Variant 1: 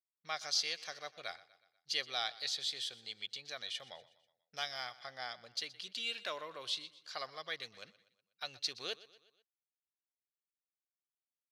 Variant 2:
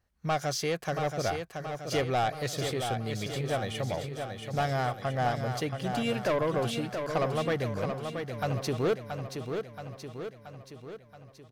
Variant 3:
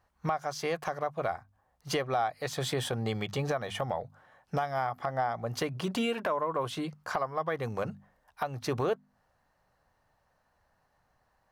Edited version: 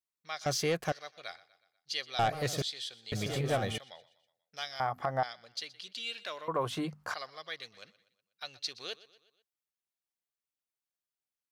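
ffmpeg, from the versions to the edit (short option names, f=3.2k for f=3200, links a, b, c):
-filter_complex "[1:a]asplit=3[a][b][c];[2:a]asplit=2[d][e];[0:a]asplit=6[f][g][h][i][j][k];[f]atrim=end=0.462[l];[a]atrim=start=0.458:end=0.922[m];[g]atrim=start=0.918:end=2.192[n];[b]atrim=start=2.188:end=2.622[o];[h]atrim=start=2.618:end=3.122[p];[c]atrim=start=3.118:end=3.782[q];[i]atrim=start=3.778:end=4.802[r];[d]atrim=start=4.798:end=5.232[s];[j]atrim=start=5.228:end=6.482[t];[e]atrim=start=6.478:end=7.142[u];[k]atrim=start=7.138[v];[l][m]acrossfade=d=0.004:c1=hsin:c2=hsin[w];[w][n]acrossfade=d=0.004:c1=hsin:c2=hsin[x];[x][o]acrossfade=d=0.004:c1=hsin:c2=hsin[y];[y][p]acrossfade=d=0.004:c1=hsin:c2=hsin[z];[z][q]acrossfade=d=0.004:c1=hsin:c2=hsin[aa];[aa][r]acrossfade=d=0.004:c1=hsin:c2=hsin[ab];[ab][s]acrossfade=d=0.004:c1=hsin:c2=hsin[ac];[ac][t]acrossfade=d=0.004:c1=hsin:c2=hsin[ad];[ad][u]acrossfade=d=0.004:c1=hsin:c2=hsin[ae];[ae][v]acrossfade=d=0.004:c1=hsin:c2=hsin"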